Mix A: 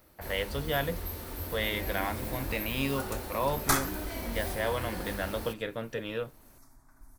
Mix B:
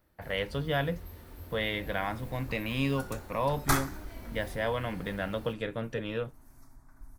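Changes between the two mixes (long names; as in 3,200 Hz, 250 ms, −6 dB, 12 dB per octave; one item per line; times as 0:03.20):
first sound −11.0 dB
master: add bass and treble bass +5 dB, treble −4 dB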